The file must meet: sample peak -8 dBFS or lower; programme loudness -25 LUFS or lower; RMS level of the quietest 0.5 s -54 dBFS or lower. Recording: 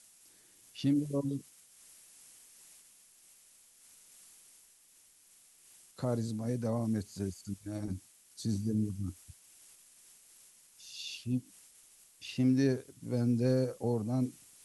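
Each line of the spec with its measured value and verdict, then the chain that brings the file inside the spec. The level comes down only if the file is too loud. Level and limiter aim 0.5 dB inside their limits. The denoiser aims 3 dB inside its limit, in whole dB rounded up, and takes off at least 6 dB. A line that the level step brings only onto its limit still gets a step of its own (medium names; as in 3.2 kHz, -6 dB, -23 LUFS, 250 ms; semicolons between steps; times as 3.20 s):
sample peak -18.0 dBFS: pass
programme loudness -34.0 LUFS: pass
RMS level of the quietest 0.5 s -63 dBFS: pass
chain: none needed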